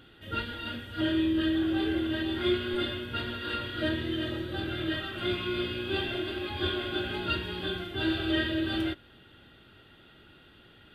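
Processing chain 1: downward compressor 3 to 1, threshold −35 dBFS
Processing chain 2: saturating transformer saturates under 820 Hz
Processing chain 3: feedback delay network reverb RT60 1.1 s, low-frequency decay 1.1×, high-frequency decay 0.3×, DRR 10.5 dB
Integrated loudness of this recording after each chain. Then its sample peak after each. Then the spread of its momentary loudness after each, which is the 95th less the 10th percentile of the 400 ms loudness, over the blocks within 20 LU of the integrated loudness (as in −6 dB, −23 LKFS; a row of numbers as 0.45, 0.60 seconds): −36.5, −33.5, −30.5 LKFS; −24.5, −16.5, −15.5 dBFS; 20, 6, 7 LU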